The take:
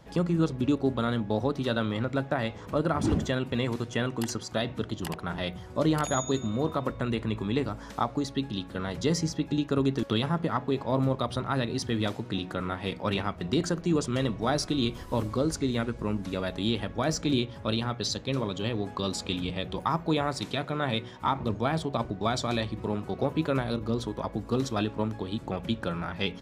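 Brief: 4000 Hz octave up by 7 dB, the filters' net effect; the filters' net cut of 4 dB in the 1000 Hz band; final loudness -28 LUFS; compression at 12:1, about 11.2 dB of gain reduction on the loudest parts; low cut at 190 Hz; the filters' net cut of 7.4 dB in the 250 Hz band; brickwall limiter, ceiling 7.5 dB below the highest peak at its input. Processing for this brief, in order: HPF 190 Hz; bell 250 Hz -7.5 dB; bell 1000 Hz -5.5 dB; bell 4000 Hz +8.5 dB; compressor 12:1, threshold -33 dBFS; gain +11 dB; limiter -15 dBFS

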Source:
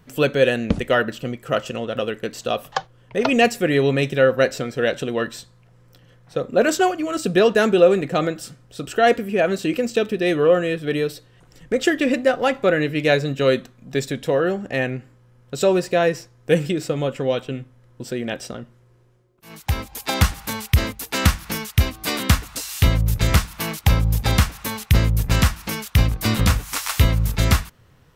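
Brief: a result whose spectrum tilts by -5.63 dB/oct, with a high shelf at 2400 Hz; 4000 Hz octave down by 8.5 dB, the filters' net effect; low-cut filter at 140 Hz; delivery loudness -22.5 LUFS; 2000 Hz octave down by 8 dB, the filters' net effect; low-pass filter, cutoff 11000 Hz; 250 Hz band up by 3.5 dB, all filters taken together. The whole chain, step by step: HPF 140 Hz; LPF 11000 Hz; bell 250 Hz +5.5 dB; bell 2000 Hz -8 dB; high shelf 2400 Hz -3 dB; bell 4000 Hz -5.5 dB; gain -1.5 dB

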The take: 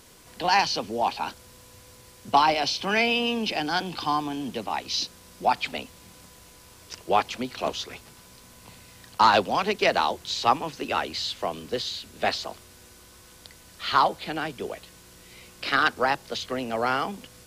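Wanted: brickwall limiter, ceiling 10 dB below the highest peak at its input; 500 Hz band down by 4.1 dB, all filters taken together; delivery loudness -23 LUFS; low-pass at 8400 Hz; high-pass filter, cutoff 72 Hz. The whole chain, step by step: HPF 72 Hz; LPF 8400 Hz; bell 500 Hz -5.5 dB; gain +6.5 dB; limiter -9.5 dBFS

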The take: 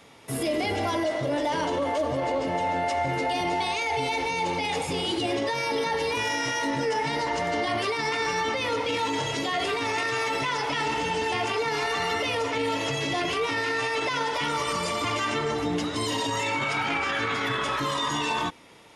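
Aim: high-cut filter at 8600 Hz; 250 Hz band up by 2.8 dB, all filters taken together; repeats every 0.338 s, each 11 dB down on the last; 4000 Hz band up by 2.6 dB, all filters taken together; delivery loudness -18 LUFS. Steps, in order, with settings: LPF 8600 Hz; bell 250 Hz +3.5 dB; bell 4000 Hz +3.5 dB; feedback echo 0.338 s, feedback 28%, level -11 dB; gain +7 dB

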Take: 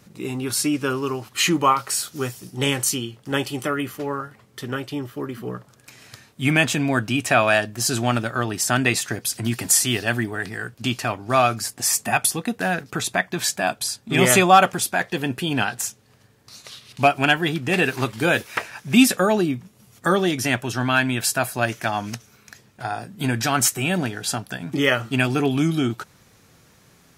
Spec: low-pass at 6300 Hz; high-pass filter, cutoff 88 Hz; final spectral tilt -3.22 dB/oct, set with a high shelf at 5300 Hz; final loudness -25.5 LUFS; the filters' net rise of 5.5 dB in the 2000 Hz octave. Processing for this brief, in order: HPF 88 Hz; LPF 6300 Hz; bell 2000 Hz +6.5 dB; high shelf 5300 Hz +5.5 dB; gain -6.5 dB

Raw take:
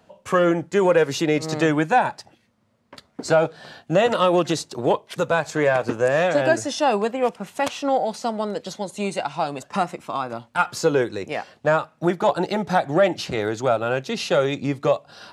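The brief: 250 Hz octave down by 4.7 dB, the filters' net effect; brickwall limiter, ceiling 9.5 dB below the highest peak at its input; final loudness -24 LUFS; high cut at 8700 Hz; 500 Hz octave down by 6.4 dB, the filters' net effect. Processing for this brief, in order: LPF 8700 Hz; bell 250 Hz -4 dB; bell 500 Hz -7 dB; gain +6 dB; limiter -12.5 dBFS

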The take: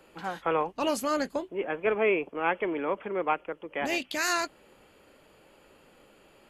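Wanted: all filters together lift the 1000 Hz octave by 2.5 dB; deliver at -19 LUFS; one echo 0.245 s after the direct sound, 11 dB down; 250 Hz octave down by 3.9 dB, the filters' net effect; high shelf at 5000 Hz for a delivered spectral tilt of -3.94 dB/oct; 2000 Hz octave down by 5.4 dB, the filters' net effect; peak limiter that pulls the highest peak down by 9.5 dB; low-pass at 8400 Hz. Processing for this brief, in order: LPF 8400 Hz; bell 250 Hz -6 dB; bell 1000 Hz +6 dB; bell 2000 Hz -8 dB; high shelf 5000 Hz -8.5 dB; limiter -22 dBFS; echo 0.245 s -11 dB; gain +14 dB

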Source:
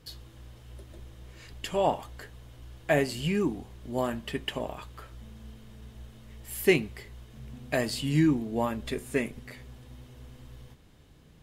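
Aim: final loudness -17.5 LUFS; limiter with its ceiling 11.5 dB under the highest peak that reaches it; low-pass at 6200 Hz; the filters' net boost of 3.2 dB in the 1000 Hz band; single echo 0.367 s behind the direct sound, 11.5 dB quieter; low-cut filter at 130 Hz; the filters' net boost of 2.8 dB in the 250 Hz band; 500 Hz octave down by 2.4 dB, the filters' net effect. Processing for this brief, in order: HPF 130 Hz; LPF 6200 Hz; bell 250 Hz +6.5 dB; bell 500 Hz -8 dB; bell 1000 Hz +7 dB; limiter -20 dBFS; echo 0.367 s -11.5 dB; gain +15 dB

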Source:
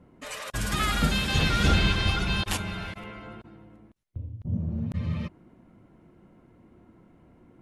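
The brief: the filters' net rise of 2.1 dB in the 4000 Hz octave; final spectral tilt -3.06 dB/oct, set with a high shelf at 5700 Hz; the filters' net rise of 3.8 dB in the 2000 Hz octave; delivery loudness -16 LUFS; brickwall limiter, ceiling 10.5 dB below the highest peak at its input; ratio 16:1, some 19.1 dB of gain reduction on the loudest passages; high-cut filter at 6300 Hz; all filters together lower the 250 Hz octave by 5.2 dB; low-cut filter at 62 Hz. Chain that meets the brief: HPF 62 Hz; LPF 6300 Hz; bell 250 Hz -8 dB; bell 2000 Hz +5.5 dB; bell 4000 Hz +4 dB; high shelf 5700 Hz -9 dB; compressor 16:1, threshold -38 dBFS; gain +28 dB; limiter -6.5 dBFS

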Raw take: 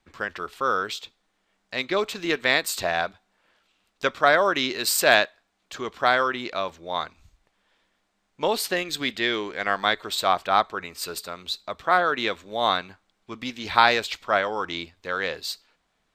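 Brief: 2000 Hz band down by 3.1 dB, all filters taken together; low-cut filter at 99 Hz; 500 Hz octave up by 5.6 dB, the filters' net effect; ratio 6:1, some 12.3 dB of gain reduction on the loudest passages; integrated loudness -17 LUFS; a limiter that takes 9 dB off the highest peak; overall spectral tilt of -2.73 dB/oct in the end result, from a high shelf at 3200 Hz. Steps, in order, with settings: HPF 99 Hz; bell 500 Hz +7.5 dB; bell 2000 Hz -3.5 dB; high shelf 3200 Hz -4 dB; compressor 6:1, threshold -24 dBFS; gain +14.5 dB; limiter -3.5 dBFS

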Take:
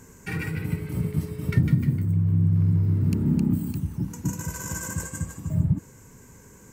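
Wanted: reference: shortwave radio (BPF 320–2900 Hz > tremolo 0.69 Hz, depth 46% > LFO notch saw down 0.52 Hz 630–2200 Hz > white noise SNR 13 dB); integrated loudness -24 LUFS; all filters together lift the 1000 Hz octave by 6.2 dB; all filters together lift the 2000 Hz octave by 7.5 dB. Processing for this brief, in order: BPF 320–2900 Hz; bell 1000 Hz +5 dB; bell 2000 Hz +8.5 dB; tremolo 0.69 Hz, depth 46%; LFO notch saw down 0.52 Hz 630–2200 Hz; white noise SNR 13 dB; gain +15 dB

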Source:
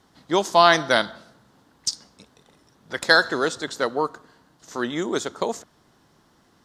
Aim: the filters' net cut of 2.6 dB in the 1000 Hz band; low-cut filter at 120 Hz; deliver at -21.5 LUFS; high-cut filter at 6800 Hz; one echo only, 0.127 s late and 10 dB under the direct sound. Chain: HPF 120 Hz; LPF 6800 Hz; bell 1000 Hz -3.5 dB; echo 0.127 s -10 dB; gain +1.5 dB

